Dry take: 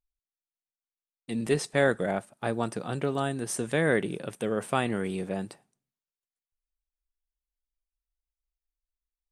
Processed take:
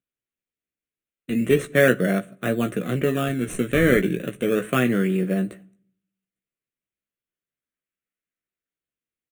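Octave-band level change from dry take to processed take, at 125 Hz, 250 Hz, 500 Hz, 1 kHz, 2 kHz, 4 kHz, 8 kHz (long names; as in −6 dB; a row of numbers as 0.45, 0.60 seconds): +7.5, +9.0, +6.5, +1.0, +7.0, +4.5, +0.5 decibels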